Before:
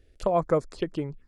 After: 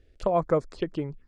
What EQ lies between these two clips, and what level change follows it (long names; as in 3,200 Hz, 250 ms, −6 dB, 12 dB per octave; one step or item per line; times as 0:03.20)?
high-frequency loss of the air 59 metres
0.0 dB